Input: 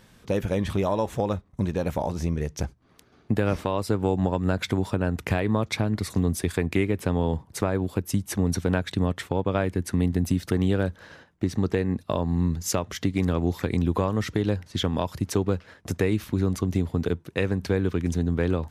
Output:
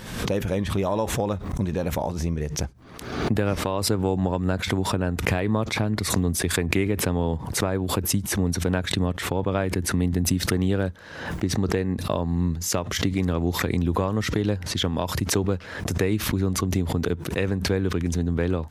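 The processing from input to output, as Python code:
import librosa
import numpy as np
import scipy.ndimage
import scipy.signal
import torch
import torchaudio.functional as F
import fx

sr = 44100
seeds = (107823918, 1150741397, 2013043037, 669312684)

y = fx.pre_swell(x, sr, db_per_s=61.0)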